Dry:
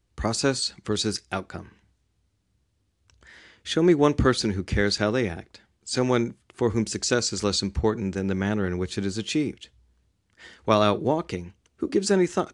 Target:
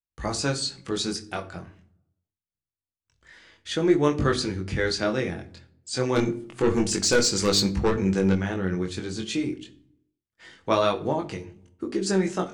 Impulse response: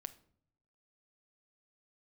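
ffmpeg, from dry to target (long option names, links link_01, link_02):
-filter_complex "[0:a]agate=range=-33dB:threshold=-53dB:ratio=3:detection=peak,bandreject=frequency=50:width_type=h:width=6,bandreject=frequency=100:width_type=h:width=6,bandreject=frequency=150:width_type=h:width=6,bandreject=frequency=200:width_type=h:width=6,bandreject=frequency=250:width_type=h:width=6,bandreject=frequency=300:width_type=h:width=6,bandreject=frequency=350:width_type=h:width=6,bandreject=frequency=400:width_type=h:width=6,bandreject=frequency=450:width_type=h:width=6,asplit=3[link_01][link_02][link_03];[link_01]afade=type=out:start_time=6.15:duration=0.02[link_04];[link_02]aeval=exprs='0.335*(cos(1*acos(clip(val(0)/0.335,-1,1)))-cos(1*PI/2))+0.106*(cos(5*acos(clip(val(0)/0.335,-1,1)))-cos(5*PI/2))+0.0188*(cos(7*acos(clip(val(0)/0.335,-1,1)))-cos(7*PI/2))':channel_layout=same,afade=type=in:start_time=6.15:duration=0.02,afade=type=out:start_time=8.34:duration=0.02[link_05];[link_03]afade=type=in:start_time=8.34:duration=0.02[link_06];[link_04][link_05][link_06]amix=inputs=3:normalize=0,flanger=delay=20:depth=3.3:speed=0.26[link_07];[1:a]atrim=start_sample=2205[link_08];[link_07][link_08]afir=irnorm=-1:irlink=0,volume=5.5dB"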